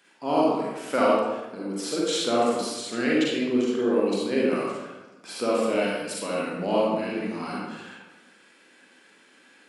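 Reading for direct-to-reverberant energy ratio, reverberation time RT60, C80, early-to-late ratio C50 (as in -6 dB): -5.5 dB, 1.1 s, 1.0 dB, -2.0 dB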